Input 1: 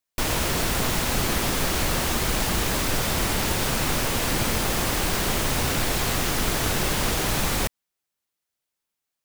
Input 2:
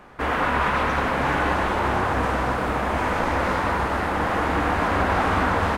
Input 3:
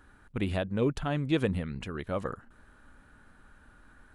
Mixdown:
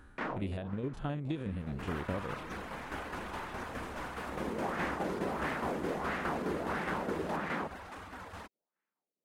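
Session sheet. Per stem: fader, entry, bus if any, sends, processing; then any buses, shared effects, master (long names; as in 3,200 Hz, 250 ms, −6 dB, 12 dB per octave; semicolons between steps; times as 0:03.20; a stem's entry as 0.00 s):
−1.0 dB, 0.00 s, bus A, no send, no echo send, Butterworth high-pass 160 Hz 48 dB per octave; auto-filter low-pass sine 1.5 Hz 420–1,900 Hz; automatic ducking −21 dB, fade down 0.80 s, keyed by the third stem
−11.5 dB, 1.60 s, no bus, no send, echo send −3 dB, reverb reduction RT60 0.57 s; high-shelf EQ 3,800 Hz +11 dB; brickwall limiter −21.5 dBFS, peak gain reduction 11.5 dB
+1.0 dB, 0.00 s, bus A, no send, echo send −23.5 dB, spectrum averaged block by block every 50 ms
bus A: 0.0 dB, low-shelf EQ 480 Hz +4.5 dB; downward compressor 12 to 1, threshold −30 dBFS, peak gain reduction 12 dB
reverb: not used
echo: single-tap delay 1,106 ms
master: shaped tremolo saw down 4.8 Hz, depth 50%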